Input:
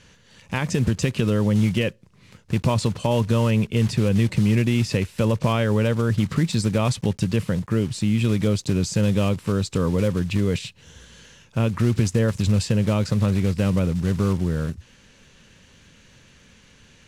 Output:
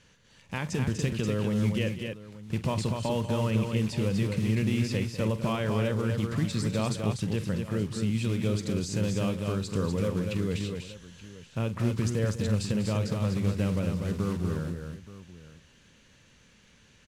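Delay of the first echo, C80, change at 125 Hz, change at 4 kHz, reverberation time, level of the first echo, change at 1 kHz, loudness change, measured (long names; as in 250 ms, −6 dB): 46 ms, no reverb audible, −7.5 dB, −6.5 dB, no reverb audible, −14.0 dB, −6.5 dB, −7.0 dB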